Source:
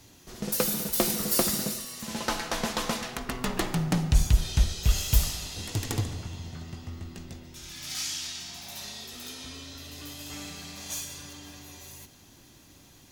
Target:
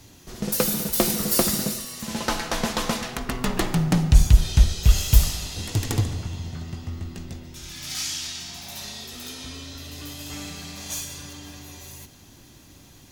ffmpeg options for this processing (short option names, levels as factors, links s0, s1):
-af "lowshelf=f=200:g=4,volume=1.5"